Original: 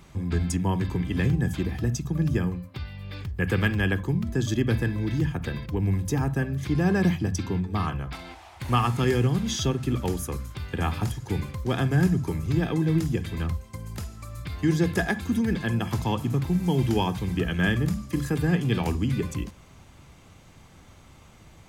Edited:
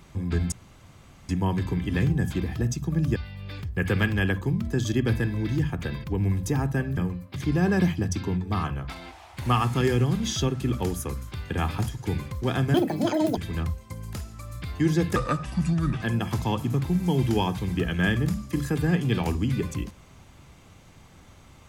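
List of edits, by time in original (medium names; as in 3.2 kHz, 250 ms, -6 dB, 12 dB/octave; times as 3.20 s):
0.52 s: insert room tone 0.77 s
2.39–2.78 s: move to 6.59 s
11.97–13.20 s: speed 196%
14.99–15.62 s: speed 73%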